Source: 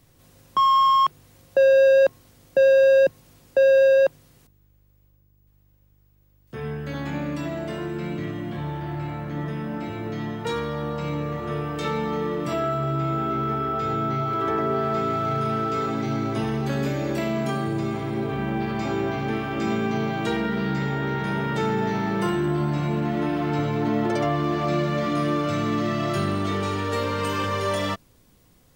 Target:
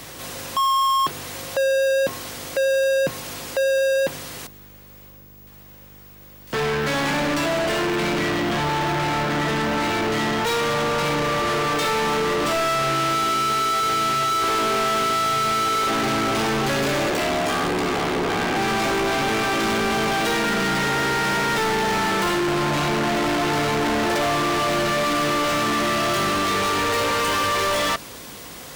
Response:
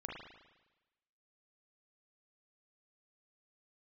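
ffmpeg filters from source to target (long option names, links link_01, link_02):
-filter_complex "[0:a]asettb=1/sr,asplit=3[link_01][link_02][link_03];[link_01]atrim=end=17.094[link_04];[link_02]atrim=start=17.09:end=18.56,asetpts=PTS-STARTPTS,afade=type=in:duration=0.004:curve=qsin,afade=type=out:start_time=1.466:duration=0.004:curve=qsin,aeval=exprs='val(0)*sin(2*PI*36*n/s)':channel_layout=same[link_05];[link_03]atrim=start=18.556[link_06];[link_04][link_05]acrossfade=duration=0.004:curve1=hsin:curve2=qsin[link_07];[link_07][link_06]acrossfade=duration=0.004:curve1=qsin:curve2=hsin,asplit=2[link_08][link_09];[link_09]highpass=frequency=720:poles=1,volume=39dB,asoftclip=type=tanh:threshold=-10dB[link_10];[link_08][link_10]amix=inputs=2:normalize=0,lowpass=frequency=7700:poles=1,volume=-6dB,aeval=exprs='val(0)+0.00355*(sin(2*PI*50*n/s)+sin(2*PI*2*50*n/s)/2+sin(2*PI*3*50*n/s)/3+sin(2*PI*4*50*n/s)/4+sin(2*PI*5*50*n/s)/5)':channel_layout=same,volume=-5.5dB"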